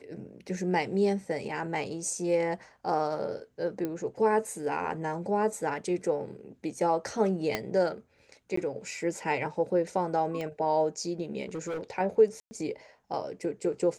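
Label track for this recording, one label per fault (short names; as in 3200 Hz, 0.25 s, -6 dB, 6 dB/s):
3.850000	3.850000	pop -20 dBFS
7.550000	7.550000	pop -13 dBFS
8.560000	8.570000	gap 14 ms
10.410000	10.410000	pop -23 dBFS
11.490000	11.810000	clipped -31 dBFS
12.400000	12.510000	gap 0.11 s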